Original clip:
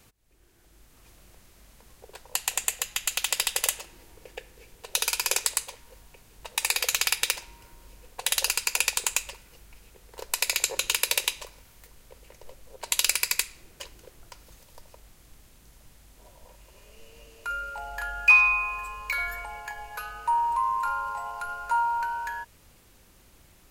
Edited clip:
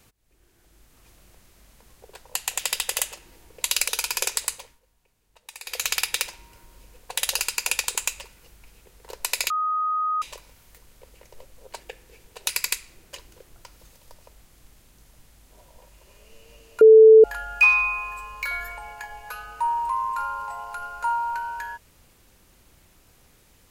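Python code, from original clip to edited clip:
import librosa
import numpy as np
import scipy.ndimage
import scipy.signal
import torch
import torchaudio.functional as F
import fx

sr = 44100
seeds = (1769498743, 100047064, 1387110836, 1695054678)

y = fx.edit(x, sr, fx.cut(start_s=2.59, length_s=0.67),
    fx.swap(start_s=4.28, length_s=0.69, other_s=12.89, other_length_s=0.27),
    fx.fade_down_up(start_s=5.6, length_s=1.42, db=-15.5, fade_s=0.29, curve='qsin'),
    fx.bleep(start_s=10.59, length_s=0.72, hz=1250.0, db=-21.5),
    fx.bleep(start_s=17.48, length_s=0.43, hz=440.0, db=-6.5), tone=tone)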